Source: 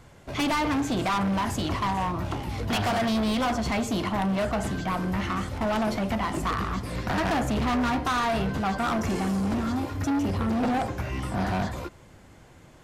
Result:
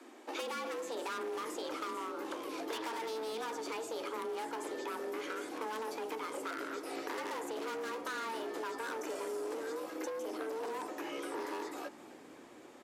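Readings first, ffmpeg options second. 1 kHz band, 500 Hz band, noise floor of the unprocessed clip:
-12.5 dB, -7.0 dB, -52 dBFS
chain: -filter_complex "[0:a]acrossover=split=120|6100[a][b][c];[a]acompressor=threshold=-47dB:ratio=4[d];[b]acompressor=threshold=-36dB:ratio=4[e];[c]acompressor=threshold=-49dB:ratio=4[f];[d][e][f]amix=inputs=3:normalize=0,afreqshift=220,asplit=6[g][h][i][j][k][l];[h]adelay=264,afreqshift=-46,volume=-18dB[m];[i]adelay=528,afreqshift=-92,volume=-22.9dB[n];[j]adelay=792,afreqshift=-138,volume=-27.8dB[o];[k]adelay=1056,afreqshift=-184,volume=-32.6dB[p];[l]adelay=1320,afreqshift=-230,volume=-37.5dB[q];[g][m][n][o][p][q]amix=inputs=6:normalize=0,volume=-3.5dB"

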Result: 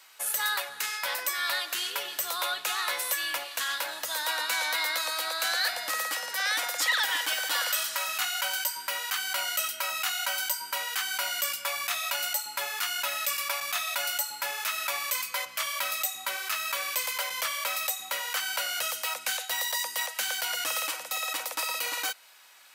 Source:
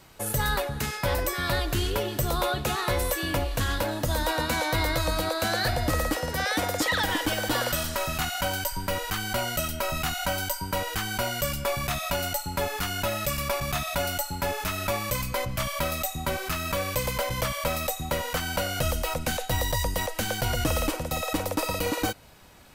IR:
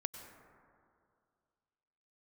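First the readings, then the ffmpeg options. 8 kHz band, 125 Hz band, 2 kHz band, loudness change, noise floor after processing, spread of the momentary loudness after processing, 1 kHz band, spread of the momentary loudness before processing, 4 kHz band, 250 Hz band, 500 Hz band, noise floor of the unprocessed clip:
+2.0 dB, under -35 dB, +1.0 dB, -1.0 dB, -44 dBFS, 4 LU, -4.0 dB, 4 LU, +2.0 dB, -24.5 dB, -12.5 dB, -37 dBFS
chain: -af "highpass=1.3k,volume=2dB"

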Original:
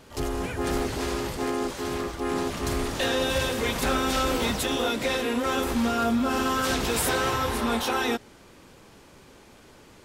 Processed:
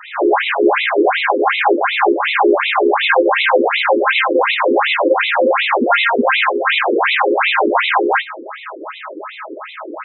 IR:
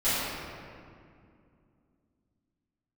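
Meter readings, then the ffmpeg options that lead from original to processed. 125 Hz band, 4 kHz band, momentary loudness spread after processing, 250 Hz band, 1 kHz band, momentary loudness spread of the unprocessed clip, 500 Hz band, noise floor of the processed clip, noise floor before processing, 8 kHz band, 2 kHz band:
under -15 dB, +9.5 dB, 17 LU, +7.5 dB, +14.5 dB, 5 LU, +13.5 dB, -34 dBFS, -52 dBFS, under -40 dB, +16.5 dB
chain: -filter_complex "[0:a]aemphasis=mode=reproduction:type=75fm,asplit=2[a][b];[b]highpass=f=720:p=1,volume=24dB,asoftclip=type=tanh:threshold=-13.5dB[c];[a][c]amix=inputs=2:normalize=0,lowpass=f=1k:p=1,volume=-6dB,aeval=exprs='val(0)+0.0282*sin(2*PI*640*n/s)':c=same,acontrast=73,aeval=exprs='0.447*(cos(1*acos(clip(val(0)/0.447,-1,1)))-cos(1*PI/2))+0.158*(cos(6*acos(clip(val(0)/0.447,-1,1)))-cos(6*PI/2))+0.00316*(cos(8*acos(clip(val(0)/0.447,-1,1)))-cos(8*PI/2))':c=same,acrusher=bits=2:mode=log:mix=0:aa=0.000001[d];[1:a]atrim=start_sample=2205,atrim=end_sample=3528,asetrate=52920,aresample=44100[e];[d][e]afir=irnorm=-1:irlink=0,afftfilt=real='re*between(b*sr/1024,360*pow(2900/360,0.5+0.5*sin(2*PI*2.7*pts/sr))/1.41,360*pow(2900/360,0.5+0.5*sin(2*PI*2.7*pts/sr))*1.41)':imag='im*between(b*sr/1024,360*pow(2900/360,0.5+0.5*sin(2*PI*2.7*pts/sr))/1.41,360*pow(2900/360,0.5+0.5*sin(2*PI*2.7*pts/sr))*1.41)':win_size=1024:overlap=0.75,volume=-2.5dB"

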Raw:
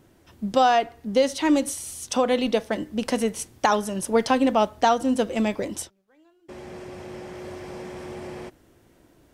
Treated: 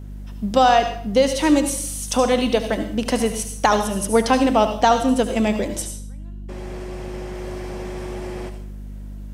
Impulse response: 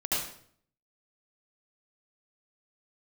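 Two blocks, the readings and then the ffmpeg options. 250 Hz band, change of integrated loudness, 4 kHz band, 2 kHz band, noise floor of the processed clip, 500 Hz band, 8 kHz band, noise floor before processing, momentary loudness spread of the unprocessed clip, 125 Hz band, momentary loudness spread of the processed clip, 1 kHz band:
+4.0 dB, +3.5 dB, +4.5 dB, +4.0 dB, -33 dBFS, +4.0 dB, +6.0 dB, -59 dBFS, 18 LU, +8.5 dB, 18 LU, +4.0 dB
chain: -filter_complex "[0:a]aeval=exprs='val(0)+0.0141*(sin(2*PI*50*n/s)+sin(2*PI*2*50*n/s)/2+sin(2*PI*3*50*n/s)/3+sin(2*PI*4*50*n/s)/4+sin(2*PI*5*50*n/s)/5)':c=same,asplit=2[a][b];[b]highshelf=f=4.8k:g=10.5[c];[1:a]atrim=start_sample=2205[d];[c][d]afir=irnorm=-1:irlink=0,volume=-16.5dB[e];[a][e]amix=inputs=2:normalize=0,volume=2.5dB"

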